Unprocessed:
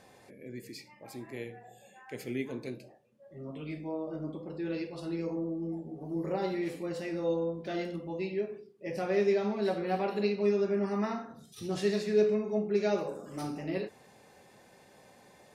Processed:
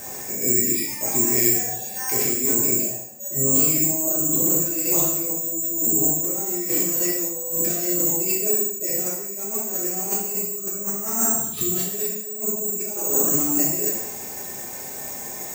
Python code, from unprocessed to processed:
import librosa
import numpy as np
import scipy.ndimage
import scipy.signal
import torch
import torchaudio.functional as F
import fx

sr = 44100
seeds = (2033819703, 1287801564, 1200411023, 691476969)

y = fx.over_compress(x, sr, threshold_db=-42.0, ratio=-1.0)
y = (np.kron(scipy.signal.resample_poly(y, 1, 6), np.eye(6)[0]) * 6)[:len(y)]
y = fx.rev_gated(y, sr, seeds[0], gate_ms=270, shape='falling', drr_db=-3.5)
y = y * 10.0 ** (5.5 / 20.0)